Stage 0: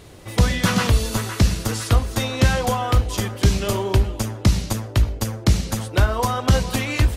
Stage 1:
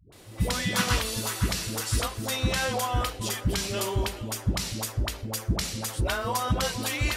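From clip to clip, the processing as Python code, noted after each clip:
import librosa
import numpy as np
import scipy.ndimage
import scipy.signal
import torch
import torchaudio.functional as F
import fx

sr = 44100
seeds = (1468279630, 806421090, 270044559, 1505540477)

y = fx.tilt_eq(x, sr, slope=1.5)
y = fx.notch(y, sr, hz=6400.0, q=24.0)
y = fx.dispersion(y, sr, late='highs', ms=124.0, hz=380.0)
y = y * librosa.db_to_amplitude(-5.5)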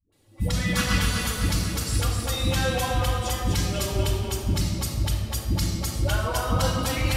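y = fx.bin_expand(x, sr, power=1.5)
y = fx.echo_split(y, sr, split_hz=480.0, low_ms=122, high_ms=250, feedback_pct=52, wet_db=-4.5)
y = fx.room_shoebox(y, sr, seeds[0], volume_m3=2800.0, walls='mixed', distance_m=2.3)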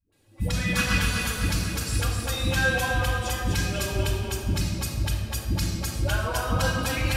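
y = fx.small_body(x, sr, hz=(1600.0, 2500.0), ring_ms=45, db=12)
y = y * librosa.db_to_amplitude(-1.5)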